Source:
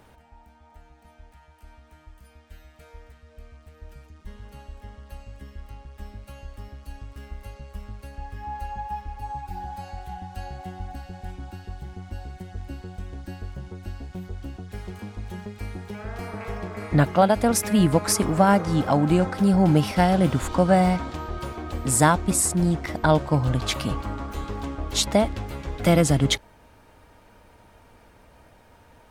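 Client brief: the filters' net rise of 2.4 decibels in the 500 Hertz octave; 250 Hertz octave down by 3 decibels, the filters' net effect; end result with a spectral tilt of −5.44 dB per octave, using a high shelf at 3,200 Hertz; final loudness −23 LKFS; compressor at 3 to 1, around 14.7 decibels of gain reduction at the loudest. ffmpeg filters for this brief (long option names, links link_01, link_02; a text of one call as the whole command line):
ffmpeg -i in.wav -af "equalizer=frequency=250:width_type=o:gain=-6,equalizer=frequency=500:width_type=o:gain=4.5,highshelf=frequency=3200:gain=-6.5,acompressor=threshold=-33dB:ratio=3,volume=13.5dB" out.wav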